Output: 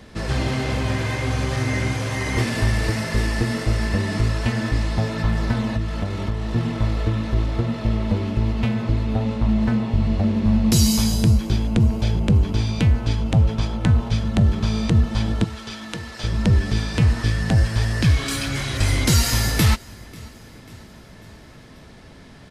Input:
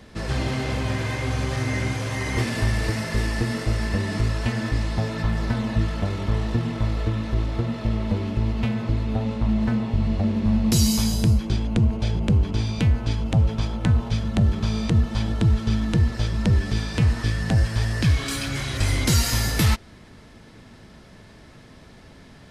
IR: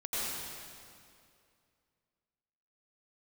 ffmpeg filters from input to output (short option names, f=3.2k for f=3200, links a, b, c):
-filter_complex "[0:a]asettb=1/sr,asplit=3[a][b][c];[a]atrim=end=5.744[d];[b]atrim=start=5.74:end=6.56,asetpts=PTS-STARTPTS,afade=t=in:d=0.004:c=qsin,afade=t=out:st=0.816:d=0.004:c=qsin,acompressor=threshold=-23dB:ratio=6[e];[c]atrim=start=6.556[f];[d][e]acrossfade=d=0.004:c1=hsin:c2=qsin[g];[g][f]acrossfade=d=0.004:c1=qsin:c2=hsin,asettb=1/sr,asplit=3[h][i][j];[h]atrim=end=15.444[k];[i]atrim=start=15.44:end=16.24,asetpts=PTS-STARTPTS,afade=t=in:d=0.004:c=qsin,afade=t=out:st=0.796:d=0.004:c=qsin,highpass=f=1k:p=1[l];[j]atrim=start=16.236[m];[k][l]acrossfade=d=0.004:c1=hsin:c2=qsin[n];[n][m]acrossfade=d=0.004:c1=qsin:c2=hsin,aecho=1:1:542|1084|1626|2168:0.0631|0.0347|0.0191|0.0105,volume=2.5dB"